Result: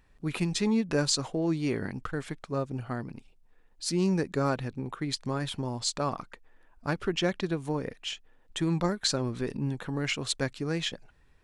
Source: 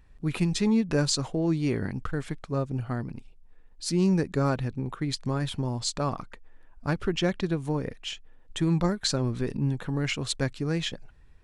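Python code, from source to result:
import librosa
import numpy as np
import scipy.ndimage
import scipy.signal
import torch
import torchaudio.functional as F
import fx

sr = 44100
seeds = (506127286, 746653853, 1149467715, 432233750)

y = fx.low_shelf(x, sr, hz=160.0, db=-9.0)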